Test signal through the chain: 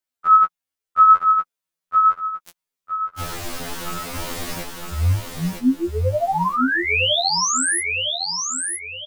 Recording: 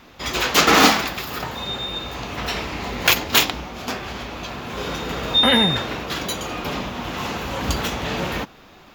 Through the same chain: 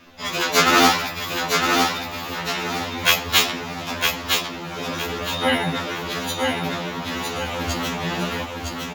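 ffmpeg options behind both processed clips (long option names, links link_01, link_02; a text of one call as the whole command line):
ffmpeg -i in.wav -filter_complex "[0:a]flanger=delay=3.1:depth=7.3:regen=16:speed=0.47:shape=triangular,asplit=2[link_01][link_02];[link_02]aecho=0:1:960|1920|2880|3840:0.631|0.208|0.0687|0.0227[link_03];[link_01][link_03]amix=inputs=2:normalize=0,afftfilt=real='re*2*eq(mod(b,4),0)':imag='im*2*eq(mod(b,4),0)':win_size=2048:overlap=0.75,volume=4.5dB" out.wav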